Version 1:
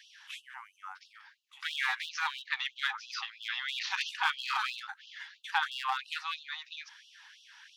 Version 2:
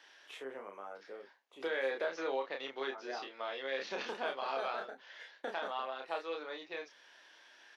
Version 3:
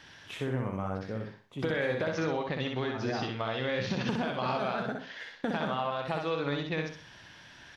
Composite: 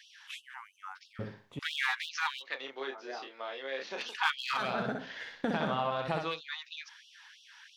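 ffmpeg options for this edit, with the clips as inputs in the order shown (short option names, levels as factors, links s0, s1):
-filter_complex "[2:a]asplit=2[s0][s1];[0:a]asplit=4[s2][s3][s4][s5];[s2]atrim=end=1.192[s6];[s0]atrim=start=1.188:end=1.592[s7];[s3]atrim=start=1.588:end=2.64[s8];[1:a]atrim=start=2.4:end=4.18[s9];[s4]atrim=start=3.94:end=4.76[s10];[s1]atrim=start=4.52:end=6.41[s11];[s5]atrim=start=6.17[s12];[s6][s7]acrossfade=d=0.004:c1=hsin:c2=hsin[s13];[s13][s8]acrossfade=d=0.004:c1=hsin:c2=hsin[s14];[s14][s9]acrossfade=d=0.24:c1=tri:c2=tri[s15];[s15][s10]acrossfade=d=0.24:c1=tri:c2=tri[s16];[s16][s11]acrossfade=d=0.24:c1=tri:c2=tri[s17];[s17][s12]acrossfade=d=0.24:c1=tri:c2=tri"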